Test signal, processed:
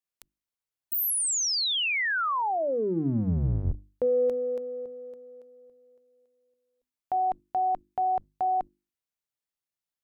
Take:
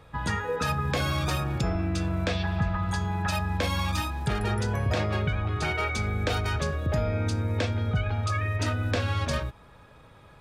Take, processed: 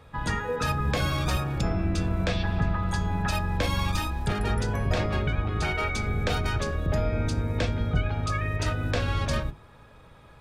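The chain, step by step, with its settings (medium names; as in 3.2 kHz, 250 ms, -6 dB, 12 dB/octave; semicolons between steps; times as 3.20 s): octave divider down 1 oct, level -1 dB; hum notches 50/100/150/200/250/300/350 Hz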